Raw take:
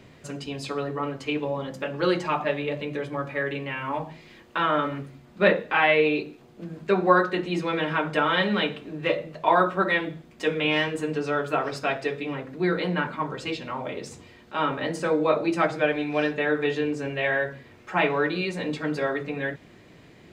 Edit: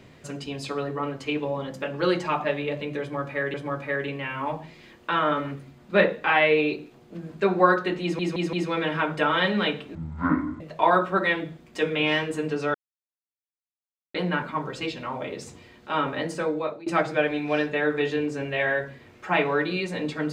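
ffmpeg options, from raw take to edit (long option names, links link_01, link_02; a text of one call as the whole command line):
ffmpeg -i in.wav -filter_complex "[0:a]asplit=10[link_01][link_02][link_03][link_04][link_05][link_06][link_07][link_08][link_09][link_10];[link_01]atrim=end=3.542[link_11];[link_02]atrim=start=3.008:end=7.662[link_12];[link_03]atrim=start=7.488:end=7.662[link_13];[link_04]atrim=start=7.488:end=7.662[link_14];[link_05]atrim=start=7.488:end=8.914[link_15];[link_06]atrim=start=8.91:end=9.25,asetpts=PTS-STARTPTS,asetrate=22932,aresample=44100[link_16];[link_07]atrim=start=9.246:end=11.39,asetpts=PTS-STARTPTS,afade=type=out:start_time=2.14:duration=0.004:curve=hsin[link_17];[link_08]atrim=start=11.39:end=12.79,asetpts=PTS-STARTPTS,volume=0[link_18];[link_09]atrim=start=12.79:end=15.51,asetpts=PTS-STARTPTS,afade=type=in:duration=0.004:curve=hsin,afade=type=out:start_time=1.91:duration=0.81:curve=qsin:silence=0.0668344[link_19];[link_10]atrim=start=15.51,asetpts=PTS-STARTPTS,afade=type=in:duration=0.004:curve=hsin:silence=0.0668344[link_20];[link_11][link_12]acrossfade=duration=0.004:curve1=hsin:curve2=hsin[link_21];[link_21][link_13]acrossfade=duration=0.004:curve1=hsin:curve2=hsin[link_22];[link_22][link_14]acrossfade=duration=0.004:curve1=hsin:curve2=hsin[link_23];[link_23][link_15]acrossfade=duration=0.004:curve1=hsin:curve2=hsin[link_24];[link_24][link_16]acrossfade=duration=0.004:curve1=hsin:curve2=hsin[link_25];[link_17][link_18][link_19][link_20]concat=n=4:v=0:a=1[link_26];[link_25][link_26]acrossfade=duration=0.004:curve1=hsin:curve2=hsin" out.wav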